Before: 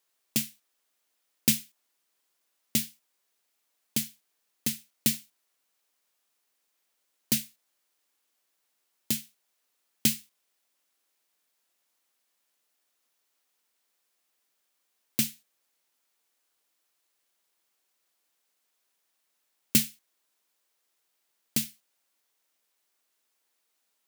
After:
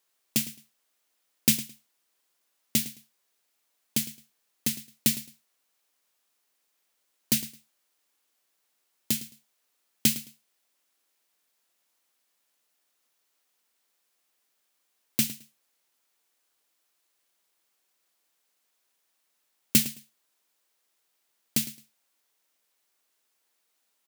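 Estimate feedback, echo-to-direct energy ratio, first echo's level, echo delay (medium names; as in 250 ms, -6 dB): 19%, -16.0 dB, -16.0 dB, 108 ms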